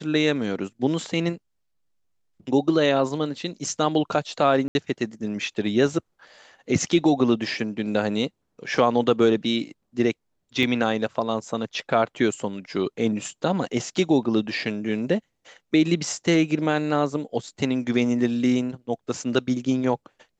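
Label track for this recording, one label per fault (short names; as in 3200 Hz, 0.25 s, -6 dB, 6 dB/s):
4.680000	4.750000	gap 71 ms
10.630000	10.630000	gap 3.5 ms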